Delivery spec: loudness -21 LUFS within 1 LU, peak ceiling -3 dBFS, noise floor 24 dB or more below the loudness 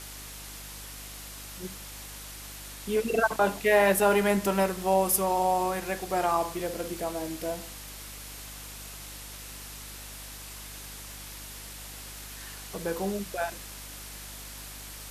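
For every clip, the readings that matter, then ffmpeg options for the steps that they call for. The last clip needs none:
hum 50 Hz; highest harmonic 300 Hz; hum level -46 dBFS; noise floor -43 dBFS; noise floor target -52 dBFS; loudness -27.5 LUFS; peak level -10.0 dBFS; loudness target -21.0 LUFS
-> -af "bandreject=f=50:t=h:w=4,bandreject=f=100:t=h:w=4,bandreject=f=150:t=h:w=4,bandreject=f=200:t=h:w=4,bandreject=f=250:t=h:w=4,bandreject=f=300:t=h:w=4"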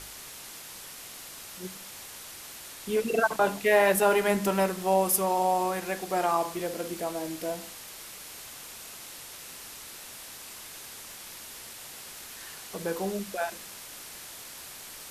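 hum not found; noise floor -44 dBFS; noise floor target -52 dBFS
-> -af "afftdn=nr=8:nf=-44"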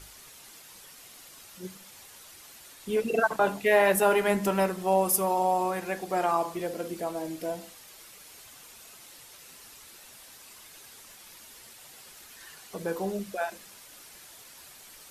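noise floor -51 dBFS; loudness -27.0 LUFS; peak level -10.5 dBFS; loudness target -21.0 LUFS
-> -af "volume=2"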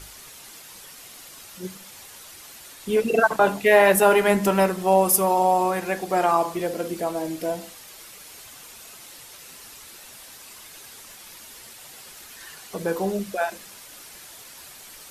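loudness -21.0 LUFS; peak level -4.5 dBFS; noise floor -45 dBFS

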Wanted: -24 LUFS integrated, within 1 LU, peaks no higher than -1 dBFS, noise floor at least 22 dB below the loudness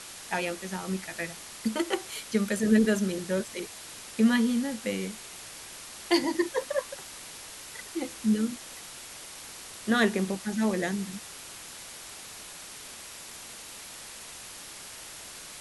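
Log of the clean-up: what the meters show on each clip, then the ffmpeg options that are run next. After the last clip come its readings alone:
noise floor -45 dBFS; noise floor target -53 dBFS; loudness -31.0 LUFS; peak level -10.5 dBFS; loudness target -24.0 LUFS
-> -af "afftdn=nr=8:nf=-45"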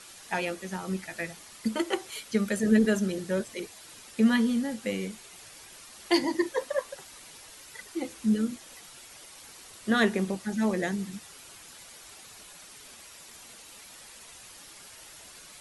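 noise floor -50 dBFS; noise floor target -51 dBFS
-> -af "afftdn=nr=6:nf=-50"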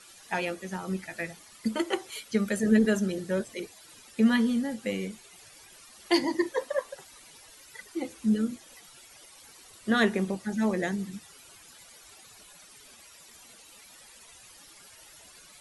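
noise floor -53 dBFS; loudness -29.0 LUFS; peak level -10.5 dBFS; loudness target -24.0 LUFS
-> -af "volume=1.78"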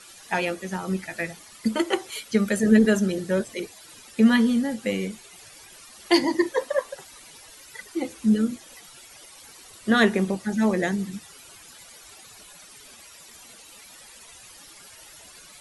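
loudness -24.0 LUFS; peak level -5.5 dBFS; noise floor -48 dBFS

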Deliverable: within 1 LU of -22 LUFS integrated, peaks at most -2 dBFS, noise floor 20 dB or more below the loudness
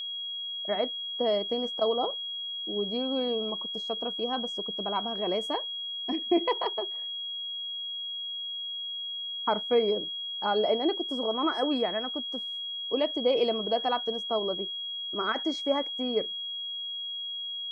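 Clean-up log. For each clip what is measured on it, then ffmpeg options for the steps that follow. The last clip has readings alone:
steady tone 3.3 kHz; tone level -33 dBFS; loudness -29.5 LUFS; peak level -14.0 dBFS; loudness target -22.0 LUFS
-> -af "bandreject=f=3300:w=30"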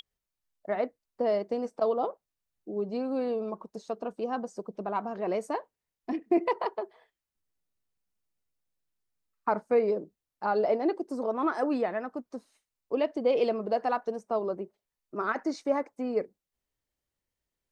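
steady tone not found; loudness -31.0 LUFS; peak level -14.5 dBFS; loudness target -22.0 LUFS
-> -af "volume=2.82"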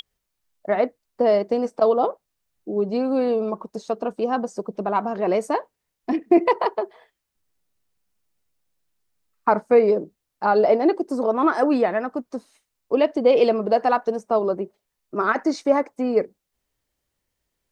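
loudness -22.0 LUFS; peak level -5.5 dBFS; noise floor -80 dBFS

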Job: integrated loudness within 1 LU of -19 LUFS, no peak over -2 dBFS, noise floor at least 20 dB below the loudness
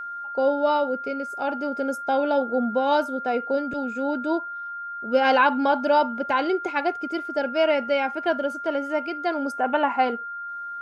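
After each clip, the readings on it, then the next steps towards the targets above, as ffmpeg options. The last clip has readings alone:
steady tone 1.4 kHz; tone level -31 dBFS; loudness -24.0 LUFS; peak level -7.5 dBFS; loudness target -19.0 LUFS
-> -af "bandreject=f=1400:w=30"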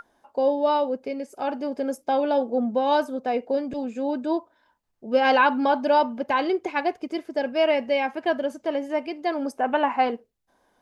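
steady tone not found; loudness -24.5 LUFS; peak level -8.0 dBFS; loudness target -19.0 LUFS
-> -af "volume=1.88"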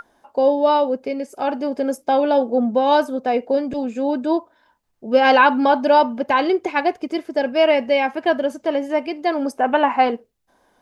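loudness -19.0 LUFS; peak level -2.5 dBFS; noise floor -63 dBFS

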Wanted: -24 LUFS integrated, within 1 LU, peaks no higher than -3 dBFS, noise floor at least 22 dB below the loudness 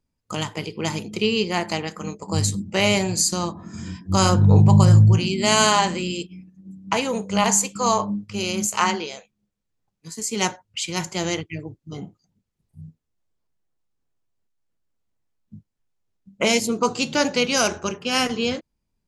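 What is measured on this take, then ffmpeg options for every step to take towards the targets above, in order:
loudness -21.0 LUFS; peak level -3.0 dBFS; loudness target -24.0 LUFS
-> -af "volume=0.708"

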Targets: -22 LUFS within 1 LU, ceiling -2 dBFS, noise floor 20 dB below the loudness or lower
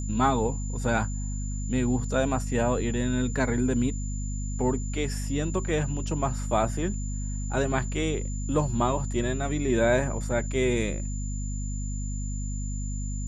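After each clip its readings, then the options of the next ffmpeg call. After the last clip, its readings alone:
hum 50 Hz; highest harmonic 250 Hz; hum level -28 dBFS; steady tone 7.1 kHz; tone level -41 dBFS; loudness -28.0 LUFS; peak level -10.0 dBFS; loudness target -22.0 LUFS
-> -af "bandreject=f=50:t=h:w=6,bandreject=f=100:t=h:w=6,bandreject=f=150:t=h:w=6,bandreject=f=200:t=h:w=6,bandreject=f=250:t=h:w=6"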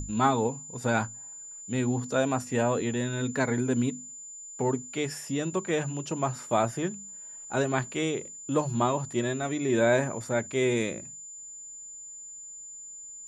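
hum not found; steady tone 7.1 kHz; tone level -41 dBFS
-> -af "bandreject=f=7100:w=30"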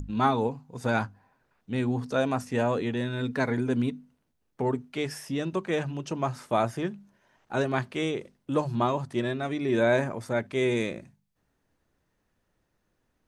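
steady tone not found; loudness -29.0 LUFS; peak level -10.5 dBFS; loudness target -22.0 LUFS
-> -af "volume=2.24"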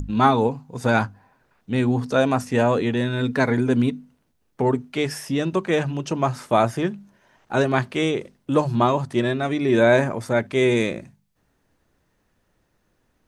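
loudness -22.0 LUFS; peak level -3.5 dBFS; noise floor -69 dBFS

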